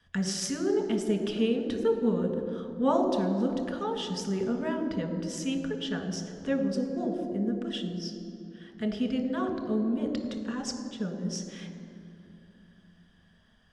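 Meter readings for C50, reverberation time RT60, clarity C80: 7.0 dB, 2.7 s, 8.0 dB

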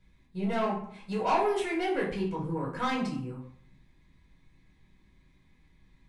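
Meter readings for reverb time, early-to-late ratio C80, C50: 0.60 s, 9.5 dB, 5.5 dB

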